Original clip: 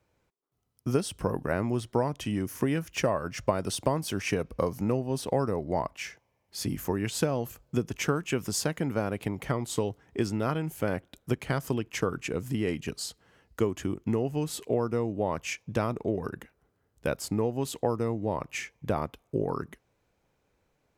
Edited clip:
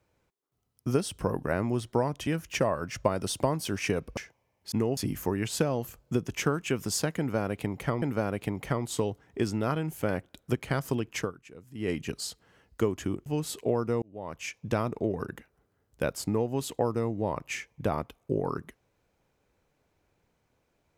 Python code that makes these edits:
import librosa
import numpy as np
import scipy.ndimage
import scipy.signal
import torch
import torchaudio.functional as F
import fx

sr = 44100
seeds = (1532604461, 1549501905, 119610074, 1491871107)

y = fx.edit(x, sr, fx.cut(start_s=2.27, length_s=0.43),
    fx.cut(start_s=4.6, length_s=1.44),
    fx.repeat(start_s=8.81, length_s=0.83, count=2),
    fx.fade_down_up(start_s=11.98, length_s=0.7, db=-17.0, fade_s=0.15),
    fx.move(start_s=14.05, length_s=0.25, to_s=6.59),
    fx.fade_in_span(start_s=15.06, length_s=0.64), tone=tone)